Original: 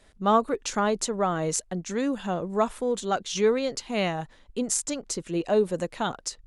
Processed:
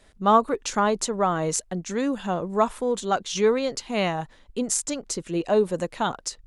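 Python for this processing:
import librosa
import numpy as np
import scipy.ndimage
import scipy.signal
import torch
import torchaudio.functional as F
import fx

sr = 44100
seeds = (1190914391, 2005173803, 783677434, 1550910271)

y = fx.dynamic_eq(x, sr, hz=1000.0, q=2.4, threshold_db=-39.0, ratio=4.0, max_db=4)
y = F.gain(torch.from_numpy(y), 1.5).numpy()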